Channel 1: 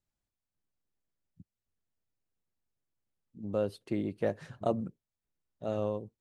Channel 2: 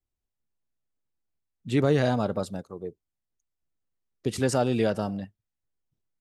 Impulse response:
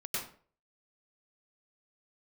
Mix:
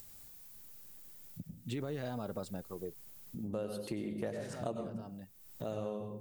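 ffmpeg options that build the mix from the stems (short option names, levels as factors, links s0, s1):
-filter_complex "[0:a]aemphasis=mode=production:type=50fm,acompressor=mode=upward:threshold=0.0178:ratio=2.5,volume=0.841,asplit=3[s0][s1][s2];[s1]volume=0.562[s3];[1:a]alimiter=limit=0.119:level=0:latency=1,volume=0.631[s4];[s2]apad=whole_len=273761[s5];[s4][s5]sidechaincompress=threshold=0.01:ratio=8:attack=11:release=1160[s6];[2:a]atrim=start_sample=2205[s7];[s3][s7]afir=irnorm=-1:irlink=0[s8];[s0][s6][s8]amix=inputs=3:normalize=0,acompressor=threshold=0.0141:ratio=3"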